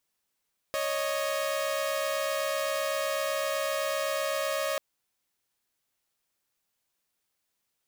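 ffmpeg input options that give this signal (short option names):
-f lavfi -i "aevalsrc='0.0398*((2*mod(554.37*t,1)-1)+(2*mod(622.25*t,1)-1))':d=4.04:s=44100"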